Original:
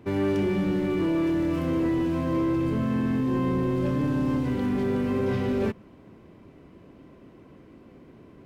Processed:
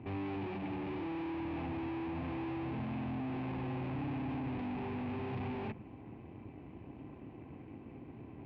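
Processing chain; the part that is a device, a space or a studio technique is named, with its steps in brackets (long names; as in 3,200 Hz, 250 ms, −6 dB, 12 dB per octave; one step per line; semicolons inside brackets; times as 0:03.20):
guitar amplifier (tube saturation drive 42 dB, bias 0.75; bass and treble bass +10 dB, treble −15 dB; loudspeaker in its box 78–4,500 Hz, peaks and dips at 180 Hz −8 dB, 300 Hz +3 dB, 560 Hz −4 dB, 810 Hz +9 dB, 1,400 Hz −5 dB, 2,500 Hz +9 dB)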